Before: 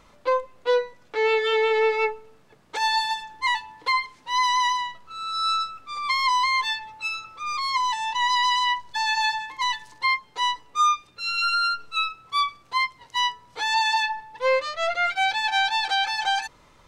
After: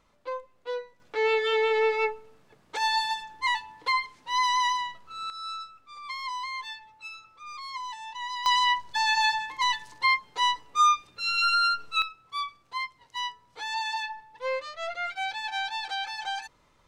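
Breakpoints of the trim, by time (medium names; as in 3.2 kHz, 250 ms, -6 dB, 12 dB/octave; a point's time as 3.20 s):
-12 dB
from 1.00 s -3 dB
from 5.30 s -12.5 dB
from 8.46 s -0.5 dB
from 12.02 s -9 dB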